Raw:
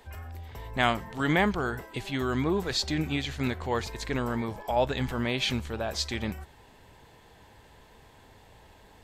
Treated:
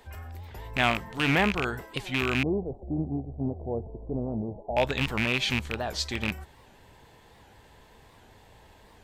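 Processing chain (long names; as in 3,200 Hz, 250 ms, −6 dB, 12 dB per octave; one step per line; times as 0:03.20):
loose part that buzzes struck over −29 dBFS, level −15 dBFS
0:02.43–0:04.77: elliptic low-pass filter 720 Hz, stop band 60 dB
wow of a warped record 78 rpm, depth 160 cents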